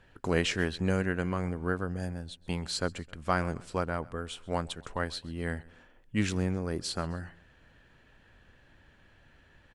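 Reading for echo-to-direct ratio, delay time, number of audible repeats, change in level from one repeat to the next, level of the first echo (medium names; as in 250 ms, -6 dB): -22.0 dB, 131 ms, 2, -6.0 dB, -23.0 dB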